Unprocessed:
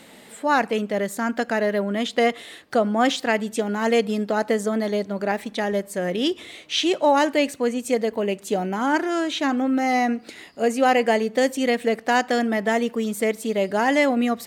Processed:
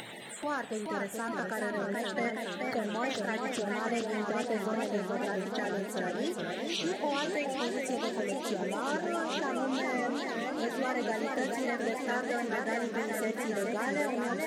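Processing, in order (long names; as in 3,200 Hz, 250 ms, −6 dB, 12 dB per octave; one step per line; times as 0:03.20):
spectral magnitudes quantised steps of 30 dB
upward compression, threshold −33 dBFS
convolution reverb RT60 0.50 s, pre-delay 4 ms, DRR 13.5 dB
downward compressor 2 to 1, threshold −35 dBFS, peak gain reduction 12 dB
feedback echo with a swinging delay time 425 ms, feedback 78%, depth 159 cents, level −4 dB
level −4 dB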